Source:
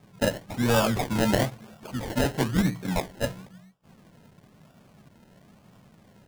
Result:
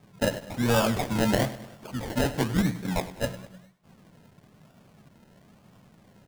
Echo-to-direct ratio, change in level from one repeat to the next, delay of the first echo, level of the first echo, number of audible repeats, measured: -14.5 dB, -6.0 dB, 101 ms, -15.5 dB, 4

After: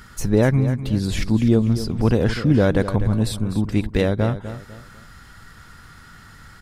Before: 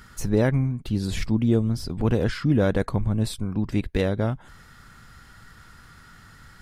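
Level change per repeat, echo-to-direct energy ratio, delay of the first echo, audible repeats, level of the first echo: -10.0 dB, -11.5 dB, 249 ms, 3, -12.0 dB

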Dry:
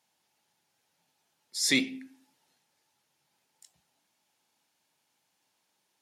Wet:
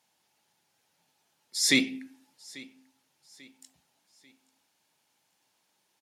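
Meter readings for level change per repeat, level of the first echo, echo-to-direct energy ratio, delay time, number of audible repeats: -8.0 dB, -22.0 dB, -21.5 dB, 841 ms, 2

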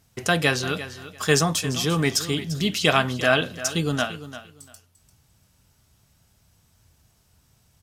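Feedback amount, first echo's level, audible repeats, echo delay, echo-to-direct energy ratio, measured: 19%, -14.0 dB, 2, 345 ms, -14.0 dB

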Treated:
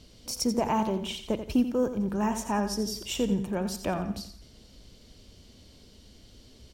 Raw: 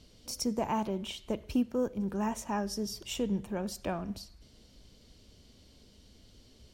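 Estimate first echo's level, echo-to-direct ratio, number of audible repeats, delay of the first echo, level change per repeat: -10.0 dB, -9.5 dB, 3, 87 ms, -9.5 dB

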